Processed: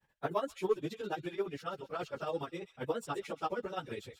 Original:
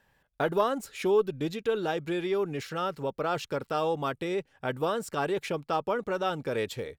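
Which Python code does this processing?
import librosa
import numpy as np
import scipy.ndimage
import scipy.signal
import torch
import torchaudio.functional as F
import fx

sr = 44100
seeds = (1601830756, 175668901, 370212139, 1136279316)

y = fx.dereverb_blind(x, sr, rt60_s=0.73)
y = 10.0 ** (-13.0 / 20.0) * np.tanh(y / 10.0 ** (-13.0 / 20.0))
y = fx.granulator(y, sr, seeds[0], grain_ms=139.0, per_s=8.8, spray_ms=15.0, spread_st=0)
y = fx.stretch_vocoder_free(y, sr, factor=0.6)
y = fx.echo_wet_highpass(y, sr, ms=130, feedback_pct=42, hz=2900.0, wet_db=-10)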